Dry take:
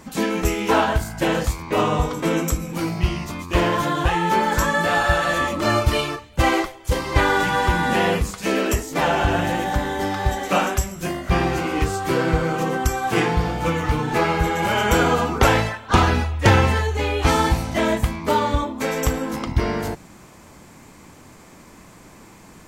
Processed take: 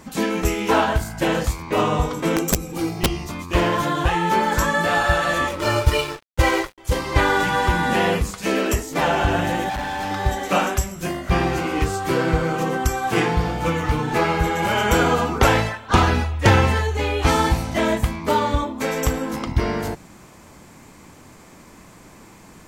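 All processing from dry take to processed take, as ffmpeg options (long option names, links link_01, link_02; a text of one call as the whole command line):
ffmpeg -i in.wav -filter_complex "[0:a]asettb=1/sr,asplit=3[link_01][link_02][link_03];[link_01]atrim=end=2.364[link_04];[link_02]atrim=start=2.36:end=3.29,asetpts=PTS-STARTPTS,afade=type=in:duration=0.004:curve=qsin,afade=type=out:start_time=0.926:duration=0.004:curve=qsin,equalizer=frequency=1700:width_type=o:width=1.5:gain=-5.5,aecho=1:1:2.5:0.51,atrim=end_sample=41013,aeval=exprs='(mod(3.76*val(0)+1,2)-1)/3.76':channel_layout=same[link_05];[link_03]atrim=start=3.286[link_06];[link_04][link_05]acrossfade=duration=0.004:curve1=hsin:curve2=qsin[link_07];[link_07][link_06]acrossfade=duration=0.004:curve1=qsin:curve2=hsin,asettb=1/sr,asplit=3[link_08][link_09][link_10];[link_08]atrim=end=5.494[link_11];[link_09]atrim=start=5.49:end=6.78,asetpts=PTS-STARTPTS,afade=type=in:duration=0.004:curve=qsin,afade=type=out:start_time=1.286:duration=0.004:curve=qsin,aecho=1:1:2.1:0.61,atrim=end_sample=56889,aeval=exprs='sgn(val(0))*max(abs(val(0))-0.0251,0)':channel_layout=same[link_12];[link_10]atrim=start=6.776[link_13];[link_11][link_12]acrossfade=duration=0.004:curve1=hsin:curve2=qsin[link_14];[link_14][link_13]acrossfade=duration=0.004:curve1=qsin:curve2=hsin,asettb=1/sr,asplit=3[link_15][link_16][link_17];[link_15]atrim=end=9.694[link_18];[link_16]atrim=start=9.69:end=10.11,asetpts=PTS-STARTPTS,afade=type=in:duration=0.004:curve=qsin,afade=type=out:start_time=0.416:duration=0.004:curve=qsin,bass=frequency=250:gain=-5,treble=frequency=4000:gain=-3,aecho=1:1:1.2:0.93,atrim=end_sample=18522,asoftclip=type=hard:threshold=-24dB[link_19];[link_17]atrim=start=10.106[link_20];[link_18][link_19]acrossfade=duration=0.004:curve1=hsin:curve2=qsin[link_21];[link_21][link_20]acrossfade=duration=0.004:curve1=qsin:curve2=hsin" out.wav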